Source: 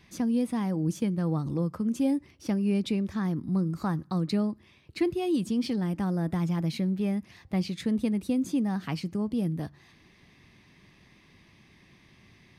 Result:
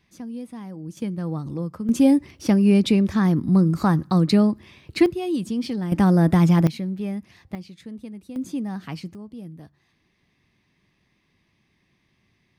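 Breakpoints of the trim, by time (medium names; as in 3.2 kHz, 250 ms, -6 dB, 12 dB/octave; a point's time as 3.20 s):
-7.5 dB
from 0.97 s 0 dB
from 1.89 s +10 dB
from 5.06 s +2 dB
from 5.92 s +12 dB
from 6.67 s 0 dB
from 7.55 s -10 dB
from 8.36 s -1 dB
from 9.15 s -9.5 dB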